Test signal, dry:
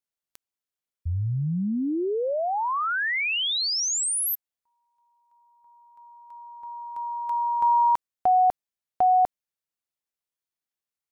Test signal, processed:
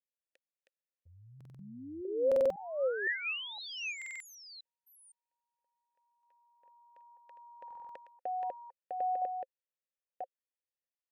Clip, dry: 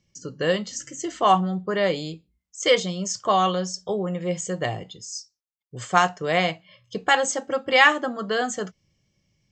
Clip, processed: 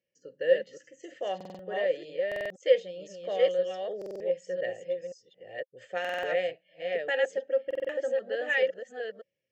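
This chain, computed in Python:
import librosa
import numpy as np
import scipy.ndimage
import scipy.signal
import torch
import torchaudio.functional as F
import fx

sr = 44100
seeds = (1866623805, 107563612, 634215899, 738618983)

y = fx.reverse_delay(x, sr, ms=512, wet_db=-2.5)
y = fx.vowel_filter(y, sr, vowel='e')
y = fx.buffer_glitch(y, sr, at_s=(1.36, 2.27, 3.97, 6.0, 7.66), block=2048, repeats=4)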